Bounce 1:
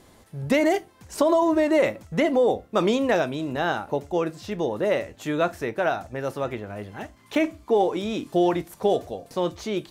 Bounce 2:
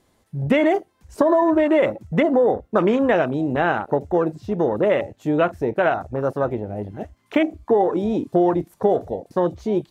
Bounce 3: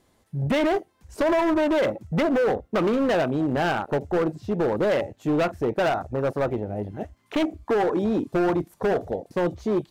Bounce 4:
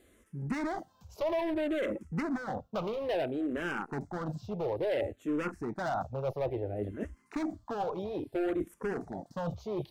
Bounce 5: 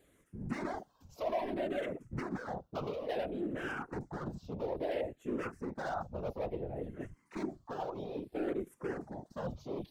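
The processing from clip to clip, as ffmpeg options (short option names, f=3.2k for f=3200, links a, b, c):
-af "afwtdn=0.0282,acompressor=threshold=-22dB:ratio=2.5,volume=7dB"
-af "asoftclip=type=hard:threshold=-17.5dB,volume=-1dB"
-filter_complex "[0:a]areverse,acompressor=threshold=-32dB:ratio=6,areverse,asplit=2[a][b];[b]afreqshift=-0.59[c];[a][c]amix=inputs=2:normalize=1,volume=3dB"
-af "afftfilt=real='hypot(re,im)*cos(2*PI*random(0))':imag='hypot(re,im)*sin(2*PI*random(1))':win_size=512:overlap=0.75,volume=1.5dB"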